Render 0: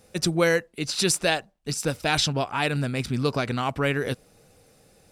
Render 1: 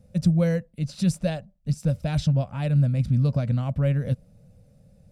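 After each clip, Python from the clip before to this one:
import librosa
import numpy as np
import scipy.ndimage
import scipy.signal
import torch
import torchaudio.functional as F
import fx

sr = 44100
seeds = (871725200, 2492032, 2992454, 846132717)

y = fx.curve_eq(x, sr, hz=(190.0, 390.0, 560.0, 790.0, 1200.0), db=(0, -26, -8, -21, -23))
y = y * 10.0 ** (8.5 / 20.0)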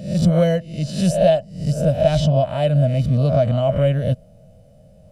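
y = fx.spec_swells(x, sr, rise_s=0.54)
y = fx.small_body(y, sr, hz=(640.0, 3000.0), ring_ms=50, db=18)
y = y * 10.0 ** (3.0 / 20.0)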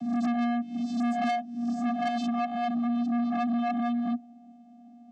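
y = fx.vocoder(x, sr, bands=16, carrier='square', carrier_hz=238.0)
y = 10.0 ** (-23.0 / 20.0) * np.tanh(y / 10.0 ** (-23.0 / 20.0))
y = y * 10.0 ** (-2.0 / 20.0)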